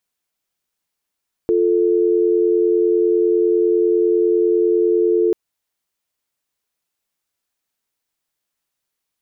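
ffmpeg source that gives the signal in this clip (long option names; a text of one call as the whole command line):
ffmpeg -f lavfi -i "aevalsrc='0.168*(sin(2*PI*350*t)+sin(2*PI*440*t))':duration=3.84:sample_rate=44100" out.wav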